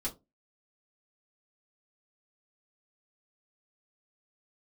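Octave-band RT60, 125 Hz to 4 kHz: 0.30 s, 0.30 s, 0.25 s, 0.20 s, 0.15 s, 0.15 s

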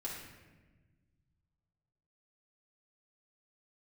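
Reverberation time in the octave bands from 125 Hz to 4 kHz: 2.8 s, 2.1 s, 1.4 s, 1.1 s, 1.2 s, 0.85 s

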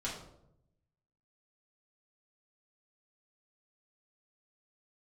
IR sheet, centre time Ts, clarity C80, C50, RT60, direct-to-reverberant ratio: 37 ms, 8.0 dB, 5.0 dB, 0.80 s, -6.5 dB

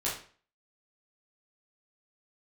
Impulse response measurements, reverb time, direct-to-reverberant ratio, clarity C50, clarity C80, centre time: 0.45 s, -7.5 dB, 5.0 dB, 10.5 dB, 36 ms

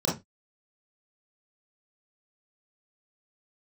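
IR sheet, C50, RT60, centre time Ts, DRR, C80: 7.0 dB, 0.20 s, 33 ms, -6.0 dB, 17.5 dB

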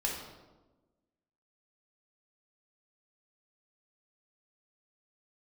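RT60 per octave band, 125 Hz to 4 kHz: 1.3 s, 1.5 s, 1.3 s, 1.0 s, 0.80 s, 0.75 s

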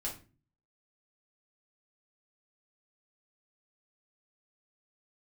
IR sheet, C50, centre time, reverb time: 8.5 dB, 22 ms, 0.35 s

